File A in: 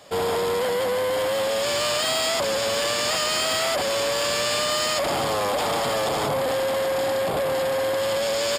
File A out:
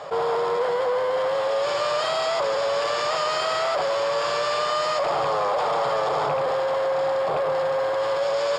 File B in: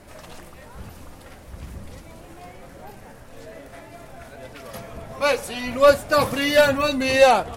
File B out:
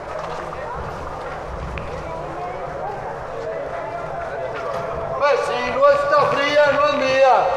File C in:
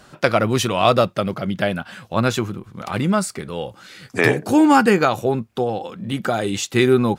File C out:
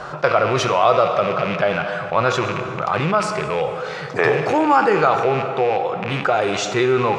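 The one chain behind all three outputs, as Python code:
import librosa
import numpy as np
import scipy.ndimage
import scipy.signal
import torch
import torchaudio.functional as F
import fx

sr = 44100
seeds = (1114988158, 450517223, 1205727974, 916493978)

y = fx.rattle_buzz(x, sr, strikes_db=-28.0, level_db=-18.0)
y = fx.curve_eq(y, sr, hz=(110.0, 150.0, 230.0, 440.0, 750.0, 1200.0, 1700.0, 3000.0, 6000.0, 12000.0), db=(0, 8, -6, 11, 12, 14, 7, 1, -1, -18))
y = fx.rev_plate(y, sr, seeds[0], rt60_s=1.6, hf_ratio=0.95, predelay_ms=0, drr_db=9.0)
y = fx.dynamic_eq(y, sr, hz=5000.0, q=0.75, threshold_db=-30.0, ratio=4.0, max_db=4)
y = fx.env_flatten(y, sr, amount_pct=50)
y = y * librosa.db_to_amplitude(-12.5)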